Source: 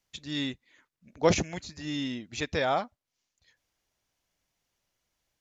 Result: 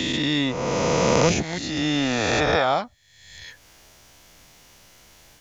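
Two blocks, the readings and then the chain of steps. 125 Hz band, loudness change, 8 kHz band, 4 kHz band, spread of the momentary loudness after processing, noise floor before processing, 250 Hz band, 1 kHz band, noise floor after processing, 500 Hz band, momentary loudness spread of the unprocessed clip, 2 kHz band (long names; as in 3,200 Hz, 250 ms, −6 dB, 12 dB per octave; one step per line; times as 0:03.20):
+10.0 dB, +8.5 dB, can't be measured, +10.5 dB, 19 LU, below −85 dBFS, +9.5 dB, +9.0 dB, −55 dBFS, +8.5 dB, 12 LU, +10.5 dB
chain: peak hold with a rise ahead of every peak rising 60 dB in 1.92 s
multiband upward and downward compressor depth 70%
level +4 dB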